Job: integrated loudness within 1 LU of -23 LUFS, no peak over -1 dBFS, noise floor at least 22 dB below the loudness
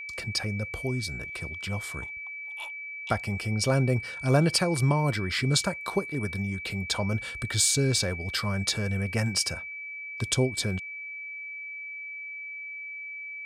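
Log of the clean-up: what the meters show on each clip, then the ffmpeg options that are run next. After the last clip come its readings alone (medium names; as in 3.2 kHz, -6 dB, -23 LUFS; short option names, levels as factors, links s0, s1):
steady tone 2.3 kHz; tone level -36 dBFS; loudness -28.5 LUFS; peak level -9.5 dBFS; loudness target -23.0 LUFS
-> -af "bandreject=f=2300:w=30"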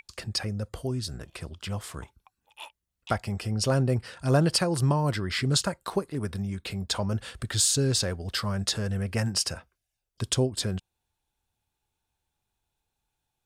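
steady tone not found; loudness -28.0 LUFS; peak level -9.5 dBFS; loudness target -23.0 LUFS
-> -af "volume=1.78"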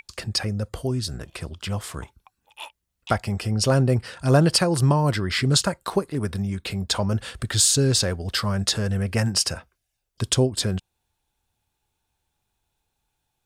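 loudness -23.0 LUFS; peak level -4.5 dBFS; noise floor -79 dBFS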